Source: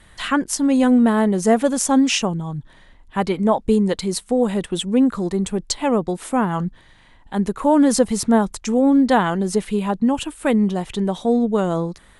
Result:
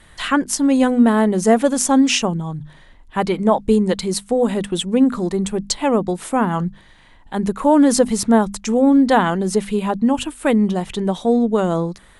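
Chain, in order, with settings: notches 50/100/150/200/250 Hz; gain +2 dB

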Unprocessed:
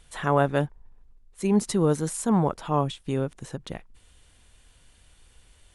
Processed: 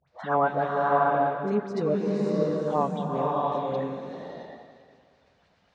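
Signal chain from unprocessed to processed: bin magnitudes rounded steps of 30 dB; high shelf 2900 Hz -9 dB; dispersion highs, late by 77 ms, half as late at 1100 Hz; 2.22–2.67 inverse Chebyshev band-stop 350–3300 Hz, stop band 40 dB; speaker cabinet 210–4800 Hz, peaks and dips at 330 Hz -8 dB, 680 Hz +6 dB, 3100 Hz -7 dB; echo with dull and thin repeats by turns 0.195 s, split 870 Hz, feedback 53%, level -9 dB; bloom reverb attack 0.65 s, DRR -2.5 dB; gain -1.5 dB

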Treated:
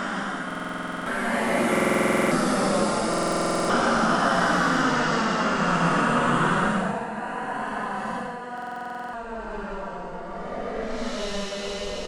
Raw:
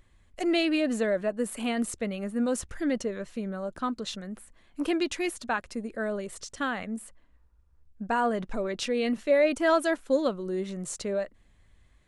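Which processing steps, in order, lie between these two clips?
spectral dilation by 0.48 s; high shelf 5300 Hz -8 dB; echo 0.942 s -14 dB; wow and flutter 81 cents; echoes that change speed 0.11 s, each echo -2 st, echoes 3, each echo -6 dB; negative-ratio compressor -27 dBFS, ratio -0.5; Paulstretch 6×, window 0.10 s, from 6.73; stuck buffer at 0.46/1.71/3.09/8.53, samples 2048, times 12

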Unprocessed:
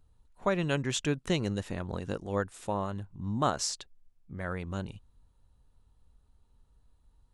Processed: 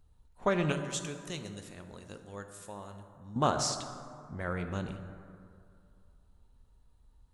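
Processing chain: 0.72–3.36 pre-emphasis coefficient 0.8; plate-style reverb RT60 2.4 s, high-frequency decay 0.4×, DRR 6.5 dB; Doppler distortion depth 0.14 ms

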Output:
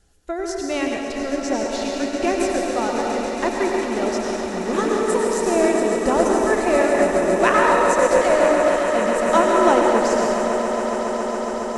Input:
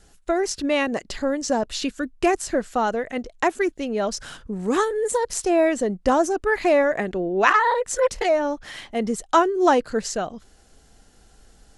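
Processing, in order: bell 78 Hz +4 dB 1.6 oct; swelling echo 0.138 s, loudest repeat 8, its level -13 dB; plate-style reverb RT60 2.6 s, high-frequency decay 0.7×, pre-delay 80 ms, DRR -1 dB; upward expander 1.5:1, over -24 dBFS; gain -1 dB

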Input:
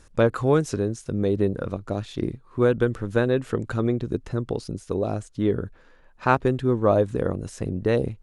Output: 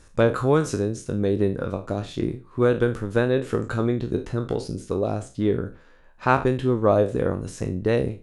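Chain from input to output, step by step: spectral trails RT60 0.32 s

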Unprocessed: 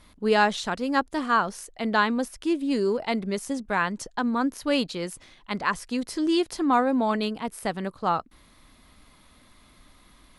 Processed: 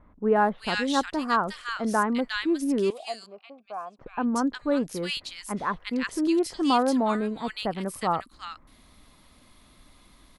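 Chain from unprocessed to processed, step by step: 2.9–3.99 vowel filter a; bands offset in time lows, highs 0.36 s, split 1600 Hz

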